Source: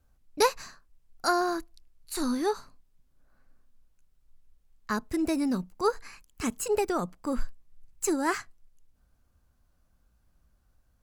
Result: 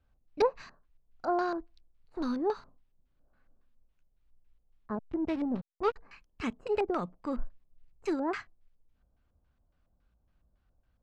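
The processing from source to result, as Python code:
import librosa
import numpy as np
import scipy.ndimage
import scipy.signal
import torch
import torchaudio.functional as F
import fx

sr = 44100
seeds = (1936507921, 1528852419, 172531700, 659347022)

y = fx.cheby_harmonics(x, sr, harmonics=(7,), levels_db=(-37,), full_scale_db=-10.0)
y = fx.backlash(y, sr, play_db=-27.0, at=(4.95, 5.96))
y = fx.filter_lfo_lowpass(y, sr, shape='square', hz=3.6, low_hz=680.0, high_hz=3100.0, q=1.3)
y = F.gain(torch.from_numpy(y), -3.0).numpy()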